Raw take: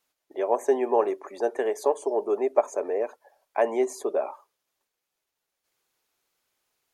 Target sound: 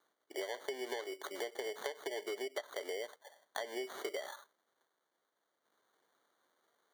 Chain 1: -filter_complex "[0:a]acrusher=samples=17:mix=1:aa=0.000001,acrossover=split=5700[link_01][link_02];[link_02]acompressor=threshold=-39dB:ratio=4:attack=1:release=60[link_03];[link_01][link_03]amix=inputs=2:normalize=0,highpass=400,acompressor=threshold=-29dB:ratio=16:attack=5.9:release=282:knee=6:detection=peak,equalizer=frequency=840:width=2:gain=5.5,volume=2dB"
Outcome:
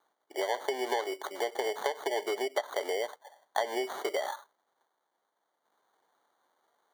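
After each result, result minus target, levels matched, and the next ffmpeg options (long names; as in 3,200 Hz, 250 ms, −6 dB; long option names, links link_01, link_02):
downward compressor: peak gain reduction −7 dB; 1,000 Hz band +5.0 dB
-filter_complex "[0:a]acrusher=samples=17:mix=1:aa=0.000001,acrossover=split=5700[link_01][link_02];[link_02]acompressor=threshold=-39dB:ratio=4:attack=1:release=60[link_03];[link_01][link_03]amix=inputs=2:normalize=0,highpass=400,acompressor=threshold=-36.5dB:ratio=16:attack=5.9:release=282:knee=6:detection=peak,equalizer=frequency=840:width=2:gain=5.5,volume=2dB"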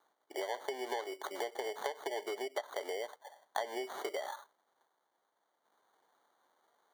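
1,000 Hz band +5.5 dB
-filter_complex "[0:a]acrusher=samples=17:mix=1:aa=0.000001,acrossover=split=5700[link_01][link_02];[link_02]acompressor=threshold=-39dB:ratio=4:attack=1:release=60[link_03];[link_01][link_03]amix=inputs=2:normalize=0,highpass=400,acompressor=threshold=-36.5dB:ratio=16:attack=5.9:release=282:knee=6:detection=peak,equalizer=frequency=840:width=2:gain=-3.5,volume=2dB"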